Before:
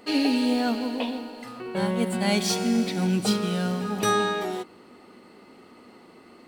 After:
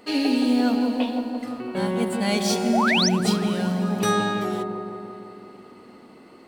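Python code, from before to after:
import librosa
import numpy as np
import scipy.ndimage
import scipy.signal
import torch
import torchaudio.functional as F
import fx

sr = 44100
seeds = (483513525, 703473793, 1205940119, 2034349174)

y = fx.spec_paint(x, sr, seeds[0], shape='rise', start_s=2.73, length_s=0.36, low_hz=570.0, high_hz=6400.0, level_db=-22.0)
y = fx.echo_wet_lowpass(y, sr, ms=170, feedback_pct=68, hz=960.0, wet_db=-4)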